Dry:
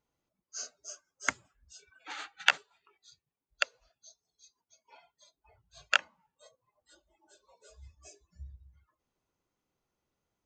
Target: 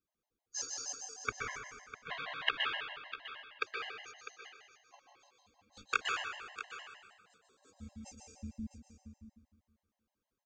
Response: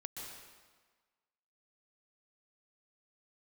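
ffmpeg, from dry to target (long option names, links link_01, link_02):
-filter_complex "[0:a]asettb=1/sr,asplit=3[link_01][link_02][link_03];[link_01]atrim=end=1.084[link_04];[link_02]atrim=start=1.08:end=3.63,asetpts=PTS-STARTPTS,afade=type=in:duration=0.004:curve=qsin,afade=type=out:start_time=2.546:duration=0.004:curve=qsin,lowpass=frequency=3600:width=0.5412,lowpass=frequency=3600:width=1.3066[link_05];[link_03]atrim=start=3.626[link_06];[link_04][link_05]acrossfade=duration=0.004:curve1=hsin:curve2=qsin[link_07];[link_07][link_06]acrossfade=duration=0.004:curve1=qsin:curve2=hsin,agate=range=-9dB:threshold=-55dB:ratio=16:detection=peak,alimiter=limit=-13.5dB:level=0:latency=1:release=118,aeval=exprs='val(0)*sin(2*PI*150*n/s)':channel_layout=same,aecho=1:1:651:0.251[link_08];[1:a]atrim=start_sample=2205[link_09];[link_08][link_09]afir=irnorm=-1:irlink=0,afftfilt=real='re*gt(sin(2*PI*6.4*pts/sr)*(1-2*mod(floor(b*sr/1024/540),2)),0)':imag='im*gt(sin(2*PI*6.4*pts/sr)*(1-2*mod(floor(b*sr/1024/540),2)),0)':win_size=1024:overlap=0.75,volume=11.5dB"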